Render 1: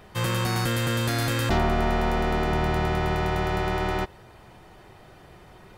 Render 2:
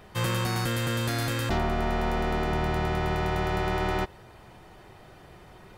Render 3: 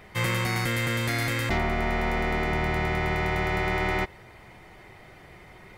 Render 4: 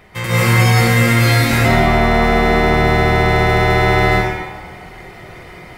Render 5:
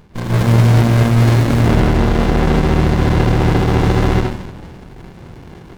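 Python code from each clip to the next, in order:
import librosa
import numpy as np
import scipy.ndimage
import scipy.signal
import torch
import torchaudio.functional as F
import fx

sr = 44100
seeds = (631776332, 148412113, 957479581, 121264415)

y1 = fx.rider(x, sr, range_db=10, speed_s=0.5)
y1 = F.gain(torch.from_numpy(y1), -2.5).numpy()
y2 = fx.peak_eq(y1, sr, hz=2100.0, db=13.5, octaves=0.26)
y3 = fx.rev_plate(y2, sr, seeds[0], rt60_s=1.3, hf_ratio=0.8, predelay_ms=120, drr_db=-9.5)
y3 = F.gain(torch.from_numpy(y3), 3.0).numpy()
y4 = fx.running_max(y3, sr, window=65)
y4 = F.gain(torch.from_numpy(y4), 2.5).numpy()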